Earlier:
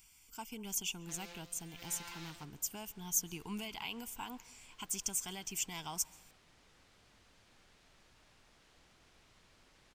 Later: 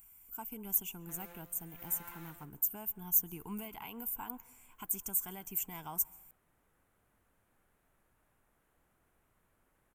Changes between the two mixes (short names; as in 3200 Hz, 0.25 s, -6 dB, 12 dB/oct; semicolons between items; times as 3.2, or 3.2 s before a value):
second sound -7.0 dB; master: add EQ curve 1500 Hz 0 dB, 4900 Hz -19 dB, 13000 Hz +13 dB